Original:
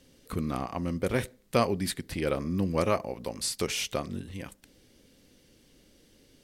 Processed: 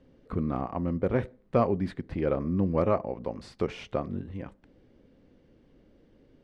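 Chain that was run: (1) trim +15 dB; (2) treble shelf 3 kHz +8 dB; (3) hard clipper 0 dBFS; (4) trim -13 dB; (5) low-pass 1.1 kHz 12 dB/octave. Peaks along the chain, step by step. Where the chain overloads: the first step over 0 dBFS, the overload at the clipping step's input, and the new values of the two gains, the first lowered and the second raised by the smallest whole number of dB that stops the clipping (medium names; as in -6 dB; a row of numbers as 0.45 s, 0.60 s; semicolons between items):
+4.5 dBFS, +7.5 dBFS, 0.0 dBFS, -13.0 dBFS, -12.5 dBFS; step 1, 7.5 dB; step 1 +7 dB, step 4 -5 dB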